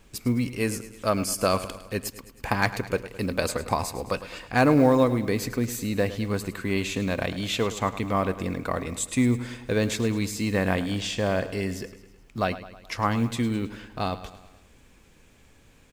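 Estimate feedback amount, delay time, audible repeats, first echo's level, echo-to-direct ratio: 55%, 106 ms, 4, −14.5 dB, −13.0 dB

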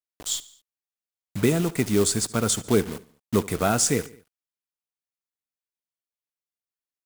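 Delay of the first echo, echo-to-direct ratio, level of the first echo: 72 ms, −18.5 dB, −20.0 dB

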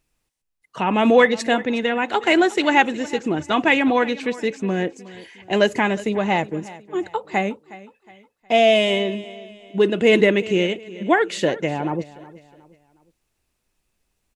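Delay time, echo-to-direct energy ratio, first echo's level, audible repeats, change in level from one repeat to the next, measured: 364 ms, −18.0 dB, −18.5 dB, 2, −8.5 dB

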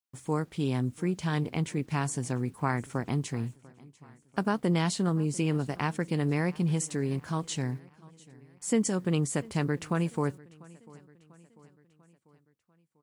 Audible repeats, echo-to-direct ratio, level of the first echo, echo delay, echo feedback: 3, −21.5 dB, −23.0 dB, 694 ms, 53%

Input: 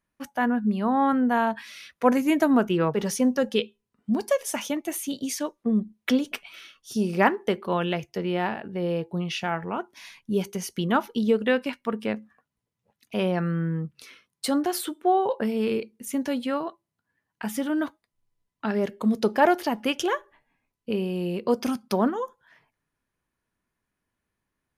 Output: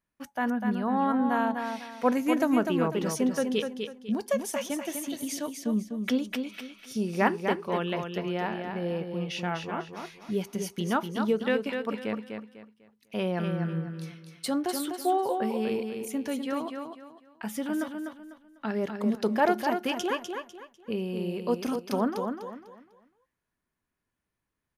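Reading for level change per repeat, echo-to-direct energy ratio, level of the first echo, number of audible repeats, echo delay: −10.5 dB, −5.5 dB, −6.0 dB, 3, 249 ms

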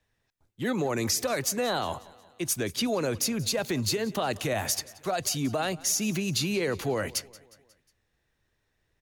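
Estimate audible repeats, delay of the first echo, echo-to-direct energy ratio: 3, 180 ms, −19.5 dB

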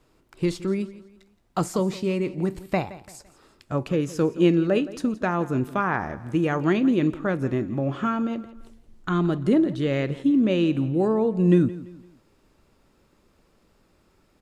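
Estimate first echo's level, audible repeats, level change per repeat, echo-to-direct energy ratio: −17.5 dB, 3, −8.5 dB, −17.0 dB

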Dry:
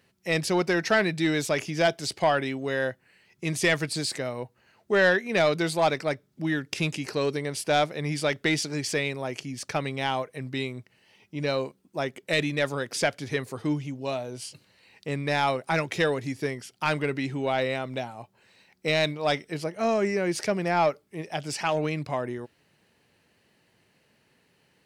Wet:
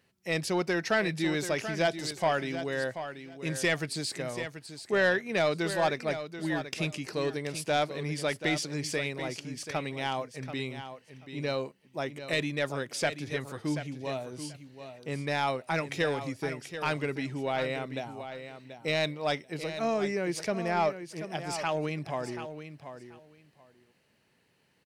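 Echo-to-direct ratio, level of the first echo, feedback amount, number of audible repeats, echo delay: −10.5 dB, −10.5 dB, 17%, 2, 734 ms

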